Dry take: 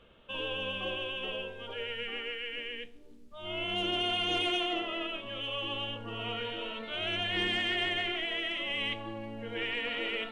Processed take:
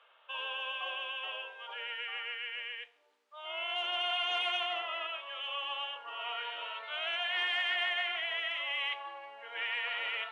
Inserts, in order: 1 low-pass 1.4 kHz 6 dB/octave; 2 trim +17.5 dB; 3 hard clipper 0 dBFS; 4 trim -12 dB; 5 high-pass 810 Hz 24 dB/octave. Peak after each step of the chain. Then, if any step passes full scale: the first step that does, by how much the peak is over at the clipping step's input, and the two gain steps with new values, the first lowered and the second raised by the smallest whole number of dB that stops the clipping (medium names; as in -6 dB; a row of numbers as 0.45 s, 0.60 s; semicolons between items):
-23.0 dBFS, -5.5 dBFS, -5.5 dBFS, -17.5 dBFS, -20.5 dBFS; nothing clips